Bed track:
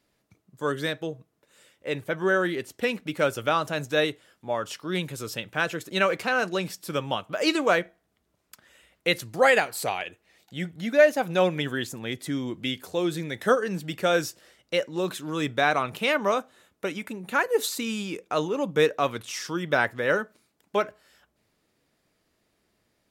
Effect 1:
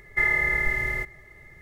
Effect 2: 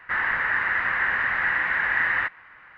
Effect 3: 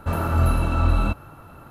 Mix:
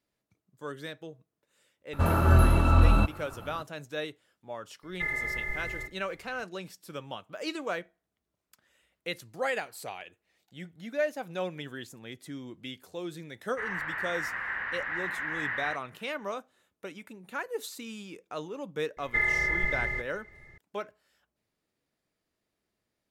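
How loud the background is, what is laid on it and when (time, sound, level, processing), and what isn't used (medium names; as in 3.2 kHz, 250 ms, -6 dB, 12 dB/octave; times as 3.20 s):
bed track -11.5 dB
1.93 s: add 3 -0.5 dB
4.83 s: add 1 -9.5 dB
13.48 s: add 2 -10.5 dB
18.97 s: add 1 -4 dB + low-pass 6.2 kHz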